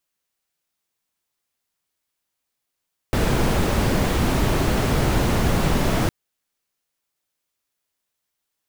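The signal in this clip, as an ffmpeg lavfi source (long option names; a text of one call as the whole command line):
ffmpeg -f lavfi -i "anoisesrc=color=brown:amplitude=0.525:duration=2.96:sample_rate=44100:seed=1" out.wav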